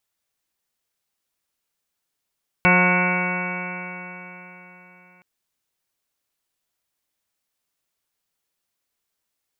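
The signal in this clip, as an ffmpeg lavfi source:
-f lavfi -i "aevalsrc='0.126*pow(10,-3*t/3.83)*sin(2*PI*179.06*t)+0.0501*pow(10,-3*t/3.83)*sin(2*PI*358.49*t)+0.0631*pow(10,-3*t/3.83)*sin(2*PI*538.64*t)+0.0631*pow(10,-3*t/3.83)*sin(2*PI*719.88*t)+0.0631*pow(10,-3*t/3.83)*sin(2*PI*902.58*t)+0.0708*pow(10,-3*t/3.83)*sin(2*PI*1087.07*t)+0.0178*pow(10,-3*t/3.83)*sin(2*PI*1273.7*t)+0.1*pow(10,-3*t/3.83)*sin(2*PI*1462.83*t)+0.0178*pow(10,-3*t/3.83)*sin(2*PI*1654.77*t)+0.0316*pow(10,-3*t/3.83)*sin(2*PI*1849.86*t)+0.0398*pow(10,-3*t/3.83)*sin(2*PI*2048.4*t)+0.158*pow(10,-3*t/3.83)*sin(2*PI*2250.71*t)+0.0188*pow(10,-3*t/3.83)*sin(2*PI*2457.07*t)+0.0631*pow(10,-3*t/3.83)*sin(2*PI*2667.78*t)':d=2.57:s=44100"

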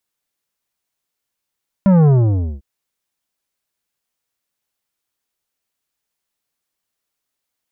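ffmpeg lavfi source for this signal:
-f lavfi -i "aevalsrc='0.355*clip((0.75-t)/0.54,0,1)*tanh(3.55*sin(2*PI*200*0.75/log(65/200)*(exp(log(65/200)*t/0.75)-1)))/tanh(3.55)':d=0.75:s=44100"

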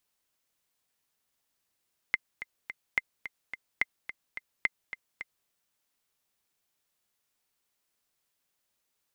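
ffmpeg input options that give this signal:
-f lavfi -i "aevalsrc='pow(10,(-11.5-12.5*gte(mod(t,3*60/215),60/215))/20)*sin(2*PI*2080*mod(t,60/215))*exp(-6.91*mod(t,60/215)/0.03)':d=3.34:s=44100"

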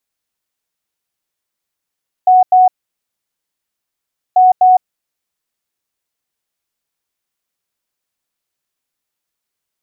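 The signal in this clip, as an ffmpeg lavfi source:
-f lavfi -i "aevalsrc='0.596*sin(2*PI*739*t)*clip(min(mod(mod(t,2.09),0.25),0.16-mod(mod(t,2.09),0.25))/0.005,0,1)*lt(mod(t,2.09),0.5)':d=4.18:s=44100"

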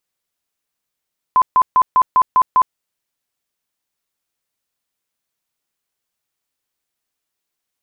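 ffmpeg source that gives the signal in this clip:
-f lavfi -i "aevalsrc='0.398*sin(2*PI*1020*mod(t,0.2))*lt(mod(t,0.2),60/1020)':d=1.4:s=44100"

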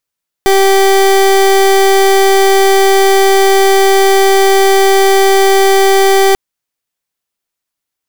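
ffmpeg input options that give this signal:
-f lavfi -i "aevalsrc='0.422*(2*lt(mod(389*t,1),0.29)-1)':d=5.89:s=44100"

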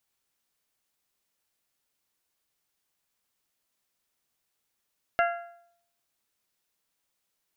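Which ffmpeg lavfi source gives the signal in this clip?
-f lavfi -i "aevalsrc='0.1*pow(10,-3*t/0.68)*sin(2*PI*689*t)+0.0668*pow(10,-3*t/0.552)*sin(2*PI*1378*t)+0.0447*pow(10,-3*t/0.523)*sin(2*PI*1653.6*t)+0.0299*pow(10,-3*t/0.489)*sin(2*PI*2067*t)+0.02*pow(10,-3*t/0.449)*sin(2*PI*2756*t)':d=1.55:s=44100"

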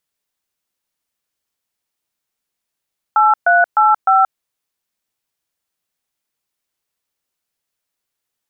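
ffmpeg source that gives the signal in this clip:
-f lavfi -i "aevalsrc='0.282*clip(min(mod(t,0.304),0.178-mod(t,0.304))/0.002,0,1)*(eq(floor(t/0.304),0)*(sin(2*PI*852*mod(t,0.304))+sin(2*PI*1336*mod(t,0.304)))+eq(floor(t/0.304),1)*(sin(2*PI*697*mod(t,0.304))+sin(2*PI*1477*mod(t,0.304)))+eq(floor(t/0.304),2)*(sin(2*PI*852*mod(t,0.304))+sin(2*PI*1336*mod(t,0.304)))+eq(floor(t/0.304),3)*(sin(2*PI*770*mod(t,0.304))+sin(2*PI*1336*mod(t,0.304))))':d=1.216:s=44100"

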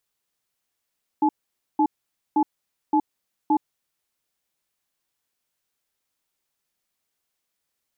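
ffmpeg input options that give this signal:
-f lavfi -i "aevalsrc='0.119*(sin(2*PI*306*t)+sin(2*PI*858*t))*clip(min(mod(t,0.57),0.07-mod(t,0.57))/0.005,0,1)':d=2.71:s=44100"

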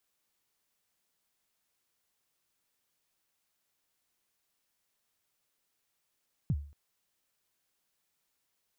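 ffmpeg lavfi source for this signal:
-f lavfi -i "aevalsrc='0.0708*pow(10,-3*t/0.43)*sin(2*PI*(180*0.049/log(72/180)*(exp(log(72/180)*min(t,0.049)/0.049)-1)+72*max(t-0.049,0)))':d=0.23:s=44100"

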